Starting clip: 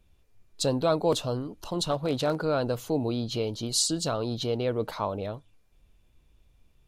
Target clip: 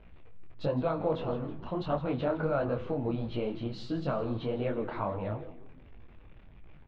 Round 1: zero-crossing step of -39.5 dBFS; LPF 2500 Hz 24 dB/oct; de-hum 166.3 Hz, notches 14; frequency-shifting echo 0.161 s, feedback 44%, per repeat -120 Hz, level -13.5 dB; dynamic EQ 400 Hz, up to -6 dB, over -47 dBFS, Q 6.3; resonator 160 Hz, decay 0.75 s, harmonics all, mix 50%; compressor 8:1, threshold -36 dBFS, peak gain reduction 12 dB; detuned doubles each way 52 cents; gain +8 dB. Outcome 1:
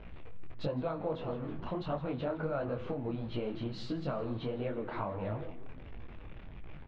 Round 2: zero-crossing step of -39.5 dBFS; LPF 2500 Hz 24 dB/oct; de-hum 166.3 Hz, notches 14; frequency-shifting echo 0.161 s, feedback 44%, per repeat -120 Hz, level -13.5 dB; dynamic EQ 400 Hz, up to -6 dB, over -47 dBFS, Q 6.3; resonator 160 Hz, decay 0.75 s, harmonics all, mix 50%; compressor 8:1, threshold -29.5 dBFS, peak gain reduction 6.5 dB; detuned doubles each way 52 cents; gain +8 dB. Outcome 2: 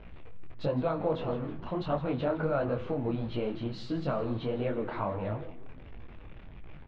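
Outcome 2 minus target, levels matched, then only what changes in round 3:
zero-crossing step: distortion +7 dB
change: zero-crossing step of -47 dBFS

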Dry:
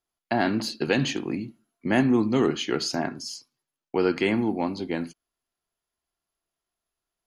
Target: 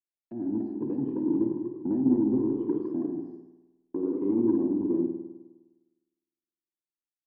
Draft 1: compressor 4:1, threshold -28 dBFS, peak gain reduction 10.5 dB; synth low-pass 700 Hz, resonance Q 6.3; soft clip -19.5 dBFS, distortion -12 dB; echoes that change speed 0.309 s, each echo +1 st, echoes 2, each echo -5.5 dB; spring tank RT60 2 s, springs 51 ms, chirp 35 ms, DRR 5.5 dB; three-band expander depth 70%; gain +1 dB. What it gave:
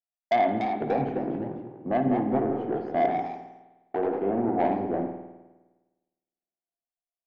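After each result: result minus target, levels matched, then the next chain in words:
compressor: peak gain reduction -6.5 dB; 500 Hz band +4.5 dB
compressor 4:1, threshold -36.5 dBFS, peak gain reduction 16.5 dB; synth low-pass 700 Hz, resonance Q 6.3; soft clip -19.5 dBFS, distortion -20 dB; echoes that change speed 0.309 s, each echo +1 st, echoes 2, each echo -5.5 dB; spring tank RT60 2 s, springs 51 ms, chirp 35 ms, DRR 5.5 dB; three-band expander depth 70%; gain +1 dB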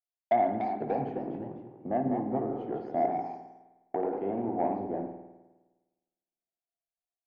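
500 Hz band +4.5 dB
compressor 4:1, threshold -36.5 dBFS, peak gain reduction 16.5 dB; synth low-pass 310 Hz, resonance Q 6.3; soft clip -19.5 dBFS, distortion -22 dB; echoes that change speed 0.309 s, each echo +1 st, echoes 2, each echo -5.5 dB; spring tank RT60 2 s, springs 51 ms, chirp 35 ms, DRR 5.5 dB; three-band expander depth 70%; gain +1 dB

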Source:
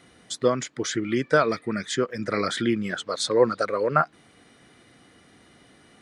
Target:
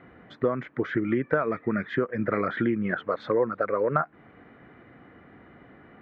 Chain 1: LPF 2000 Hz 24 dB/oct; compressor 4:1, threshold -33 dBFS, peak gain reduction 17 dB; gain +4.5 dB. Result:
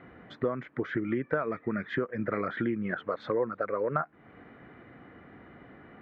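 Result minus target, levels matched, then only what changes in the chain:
compressor: peak gain reduction +5 dB
change: compressor 4:1, threshold -26.5 dBFS, peak gain reduction 12 dB

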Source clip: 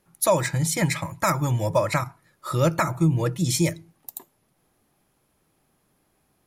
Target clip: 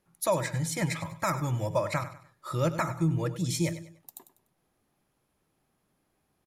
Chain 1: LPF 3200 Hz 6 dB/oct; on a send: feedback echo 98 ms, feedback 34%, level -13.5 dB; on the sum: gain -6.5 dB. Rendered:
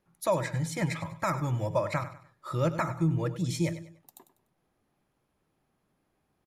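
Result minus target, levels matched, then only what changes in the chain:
8000 Hz band -5.5 dB
change: LPF 9100 Hz 6 dB/oct

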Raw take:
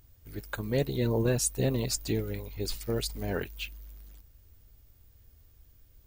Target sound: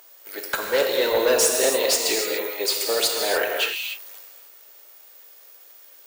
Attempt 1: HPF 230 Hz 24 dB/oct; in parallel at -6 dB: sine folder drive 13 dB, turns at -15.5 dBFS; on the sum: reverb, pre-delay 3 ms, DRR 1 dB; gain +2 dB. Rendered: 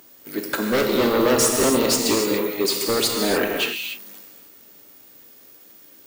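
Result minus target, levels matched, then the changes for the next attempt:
250 Hz band +11.5 dB
change: HPF 500 Hz 24 dB/oct

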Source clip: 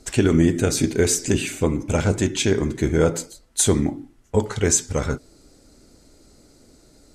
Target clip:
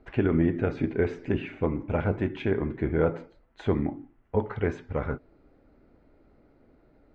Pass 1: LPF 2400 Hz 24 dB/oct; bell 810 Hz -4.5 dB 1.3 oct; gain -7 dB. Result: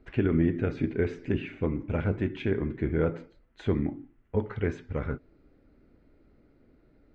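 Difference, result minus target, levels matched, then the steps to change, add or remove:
1000 Hz band -4.5 dB
change: bell 810 Hz +3.5 dB 1.3 oct

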